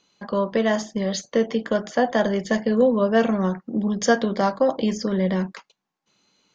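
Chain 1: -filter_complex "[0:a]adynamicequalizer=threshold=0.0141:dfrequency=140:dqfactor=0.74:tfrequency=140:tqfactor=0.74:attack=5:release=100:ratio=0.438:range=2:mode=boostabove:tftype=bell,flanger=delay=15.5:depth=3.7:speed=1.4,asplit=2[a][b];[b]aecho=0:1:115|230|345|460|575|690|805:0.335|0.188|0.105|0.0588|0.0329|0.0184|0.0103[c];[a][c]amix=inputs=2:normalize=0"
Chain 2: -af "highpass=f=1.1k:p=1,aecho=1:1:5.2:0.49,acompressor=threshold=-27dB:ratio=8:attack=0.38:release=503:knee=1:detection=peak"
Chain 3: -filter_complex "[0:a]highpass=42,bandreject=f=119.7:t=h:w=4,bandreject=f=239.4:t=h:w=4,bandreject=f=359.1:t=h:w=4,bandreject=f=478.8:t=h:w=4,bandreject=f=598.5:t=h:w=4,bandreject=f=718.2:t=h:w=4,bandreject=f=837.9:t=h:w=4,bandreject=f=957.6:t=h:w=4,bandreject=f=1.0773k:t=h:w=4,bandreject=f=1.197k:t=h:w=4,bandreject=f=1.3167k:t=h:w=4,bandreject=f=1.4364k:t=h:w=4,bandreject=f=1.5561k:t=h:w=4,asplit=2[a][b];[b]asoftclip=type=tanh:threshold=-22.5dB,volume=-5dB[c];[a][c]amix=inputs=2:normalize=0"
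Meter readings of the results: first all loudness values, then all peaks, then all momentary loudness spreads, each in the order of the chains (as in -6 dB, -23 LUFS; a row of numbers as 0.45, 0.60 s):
-23.0, -36.0, -20.5 LUFS; -4.5, -20.5, -5.0 dBFS; 7, 4, 6 LU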